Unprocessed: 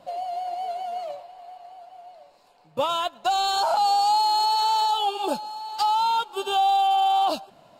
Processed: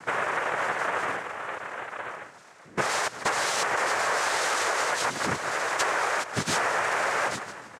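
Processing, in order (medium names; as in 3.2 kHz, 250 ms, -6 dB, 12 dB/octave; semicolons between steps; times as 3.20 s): on a send: feedback delay 153 ms, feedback 25%, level -18.5 dB; on the sum: dynamic bell 450 Hz, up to -4 dB, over -34 dBFS, Q 0.75; noise-vocoded speech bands 3; compression 6:1, threshold -32 dBFS, peak gain reduction 13.5 dB; trim +8 dB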